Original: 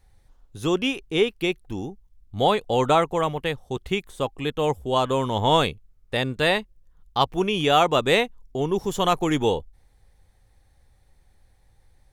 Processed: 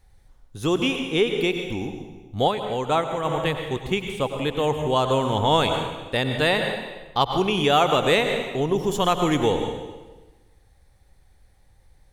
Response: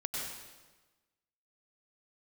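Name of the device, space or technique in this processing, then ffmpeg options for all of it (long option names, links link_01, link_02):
ducked reverb: -filter_complex "[0:a]asplit=3[link_01][link_02][link_03];[1:a]atrim=start_sample=2205[link_04];[link_02][link_04]afir=irnorm=-1:irlink=0[link_05];[link_03]apad=whole_len=534793[link_06];[link_05][link_06]sidechaincompress=threshold=-22dB:ratio=8:attack=36:release=166,volume=-3dB[link_07];[link_01][link_07]amix=inputs=2:normalize=0,asplit=3[link_08][link_09][link_10];[link_08]afade=type=out:start_time=2.47:duration=0.02[link_11];[link_09]agate=range=-6dB:threshold=-14dB:ratio=16:detection=peak,afade=type=in:start_time=2.47:duration=0.02,afade=type=out:start_time=3.24:duration=0.02[link_12];[link_10]afade=type=in:start_time=3.24:duration=0.02[link_13];[link_11][link_12][link_13]amix=inputs=3:normalize=0,volume=-2.5dB"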